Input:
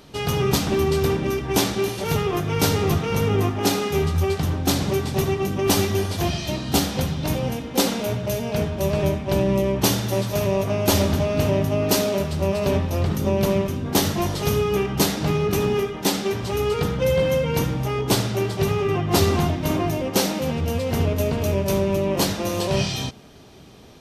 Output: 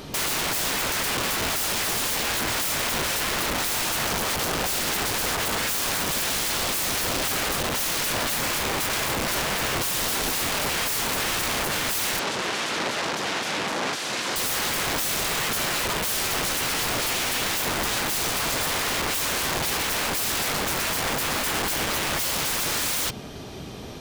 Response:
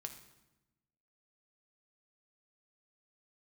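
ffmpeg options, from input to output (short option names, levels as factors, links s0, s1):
-filter_complex "[0:a]acompressor=threshold=0.0631:ratio=5,aeval=exprs='(mod(31.6*val(0)+1,2)-1)/31.6':c=same,asettb=1/sr,asplit=3[s0][s1][s2];[s0]atrim=end=12.194[s3];[s1]atrim=start=12.19:end=14.36,asetpts=PTS-STARTPTS,afade=t=in:d=0.004:c=qsin,afade=t=out:st=2.166:d=0.004:c=qsin,highpass=180,lowpass=6000[s4];[s2]atrim=start=14.356[s5];[s3][s4]acrossfade=d=0.004:c1=hsin:c2=qsin[s6];[s6][s5]acrossfade=d=0.004:c1=qsin:c2=hsin,volume=2.82"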